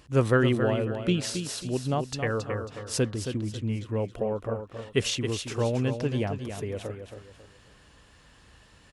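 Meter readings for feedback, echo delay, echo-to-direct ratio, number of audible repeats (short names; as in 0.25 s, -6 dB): 32%, 0.272 s, -7.5 dB, 3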